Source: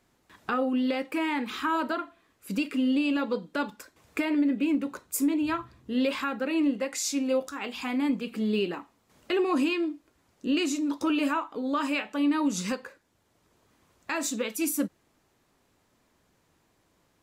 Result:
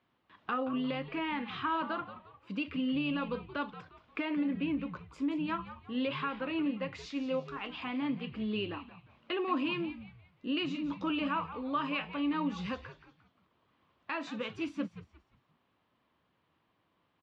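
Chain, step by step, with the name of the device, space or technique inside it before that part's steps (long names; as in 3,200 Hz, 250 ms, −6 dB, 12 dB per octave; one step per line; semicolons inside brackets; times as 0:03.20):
frequency-shifting delay pedal into a guitar cabinet (echo with shifted repeats 176 ms, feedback 37%, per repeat −110 Hz, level −13 dB; loudspeaker in its box 79–3,800 Hz, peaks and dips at 410 Hz −3 dB, 1,100 Hz +6 dB, 3,000 Hz +5 dB)
level −7 dB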